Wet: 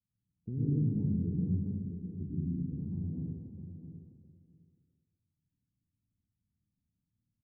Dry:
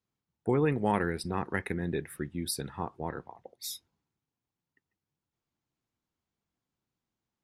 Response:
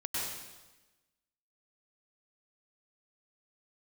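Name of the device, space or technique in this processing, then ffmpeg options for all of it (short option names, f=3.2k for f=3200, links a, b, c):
club heard from the street: -filter_complex "[0:a]asettb=1/sr,asplit=3[a][b][c];[a]atrim=end=1.584[d];[b]atrim=start=1.58:end=2.05,asetpts=PTS-STARTPTS,afade=t=in:d=0.004:c=qsin,afade=t=out:st=0.466:d=0.004:c=qsin,highpass=f=1.3k:p=1[e];[c]atrim=start=2.046[f];[d][e]acrossfade=d=0.004:c1=hsin:c2=qsin[g];[g][f]acrossfade=d=0.004:c1=qsin:c2=hsin,alimiter=limit=-21dB:level=0:latency=1,lowpass=f=220:w=0.5412,lowpass=f=220:w=1.3066[h];[1:a]atrim=start_sample=2205[i];[h][i]afir=irnorm=-1:irlink=0,asplit=2[j][k];[k]adelay=660,lowpass=f=2k:p=1,volume=-9.5dB,asplit=2[l][m];[m]adelay=660,lowpass=f=2k:p=1,volume=0.16[n];[j][l][n]amix=inputs=3:normalize=0,volume=2.5dB"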